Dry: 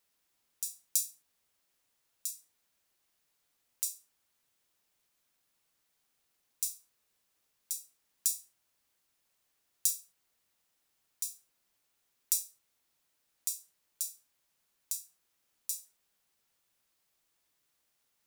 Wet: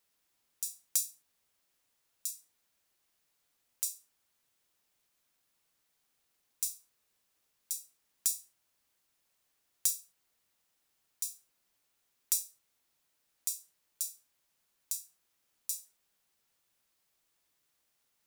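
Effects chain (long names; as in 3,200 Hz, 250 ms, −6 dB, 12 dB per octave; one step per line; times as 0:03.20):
hard clipping −11 dBFS, distortion −18 dB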